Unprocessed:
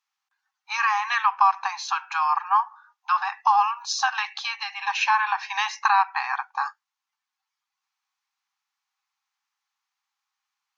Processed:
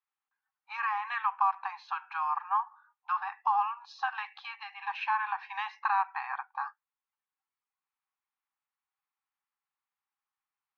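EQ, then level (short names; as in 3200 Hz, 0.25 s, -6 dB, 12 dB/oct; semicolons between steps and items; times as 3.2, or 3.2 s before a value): air absorption 410 m; -6.5 dB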